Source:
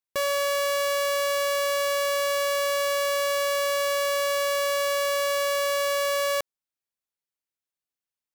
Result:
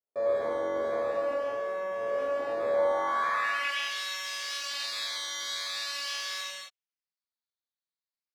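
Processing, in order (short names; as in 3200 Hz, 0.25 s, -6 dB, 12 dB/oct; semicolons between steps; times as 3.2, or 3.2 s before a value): 1.33–2 overdrive pedal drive 2 dB, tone 7500 Hz, clips at -20 dBFS; decimation with a swept rate 13×, swing 60% 0.43 Hz; band-pass sweep 500 Hz -> 4300 Hz, 2.63–3.92; non-linear reverb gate 0.3 s flat, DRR -7.5 dB; gain -5 dB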